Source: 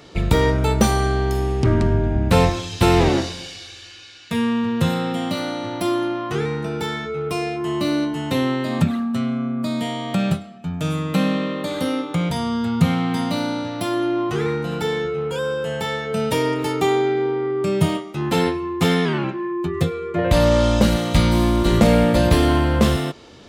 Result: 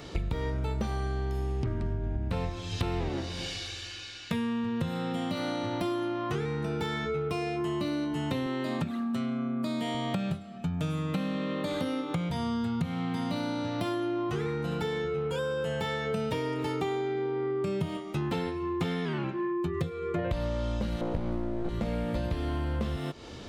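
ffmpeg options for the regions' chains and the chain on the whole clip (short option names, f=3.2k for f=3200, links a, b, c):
-filter_complex "[0:a]asettb=1/sr,asplit=3[a][b][c];[a]atrim=end=8.464[d];[b]atrim=start=8.46:end=9.95,asetpts=PTS-STARTPTS,afade=t=in:d=0.004:c=qsin,afade=t=out:st=1.486:d=0.004:c=qsin,highpass=f=220:p=1,equalizer=f=340:t=o:w=0.42:g=4.5[e];[c]atrim=start=9.946[f];[d][e]acrossfade=d=0.004:c1=hsin:c2=qsin[g];[g][f]acrossfade=d=0.004:c1=qsin:c2=hsin,asettb=1/sr,asplit=3[h][i][j];[h]atrim=end=21.014[k];[i]atrim=start=21.01:end=21.69,asetpts=PTS-STARTPTS,afade=t=in:d=0.004:c=qsin,afade=t=out:st=0.676:d=0.004:c=qsin,lowpass=f=1.4k:p=1,equalizer=f=430:w=0.87:g=13.5,aeval=exprs='clip(val(0),-1,0.133)':c=same[l];[j]atrim=start=21.686[m];[k][l]acrossfade=d=0.004:c1=hsin:c2=qsin[n];[n][m]acrossfade=d=0.004:c1=qsin:c2=hsin,acrossover=split=4900[o][p];[p]acompressor=threshold=-43dB:ratio=4:attack=1:release=60[q];[o][q]amix=inputs=2:normalize=0,lowshelf=f=87:g=9,acompressor=threshold=-28dB:ratio=10"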